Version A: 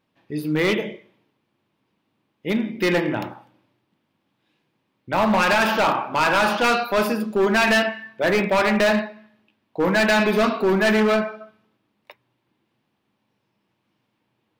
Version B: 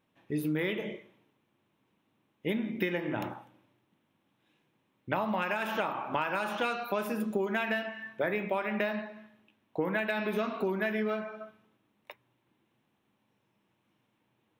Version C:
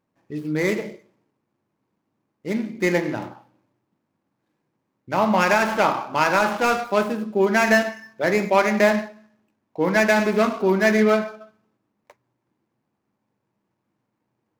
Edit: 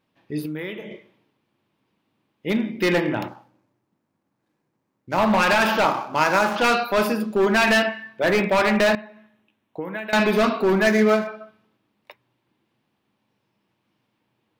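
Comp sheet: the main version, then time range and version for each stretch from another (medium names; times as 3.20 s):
A
0.46–0.91 s: from B
3.28–5.18 s: from C
5.85–6.56 s: from C
8.95–10.13 s: from B
10.87–11.27 s: from C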